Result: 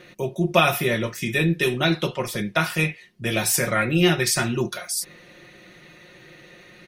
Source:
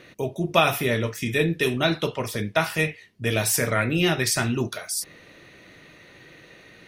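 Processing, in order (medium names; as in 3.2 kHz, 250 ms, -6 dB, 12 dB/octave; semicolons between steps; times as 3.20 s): comb 5.6 ms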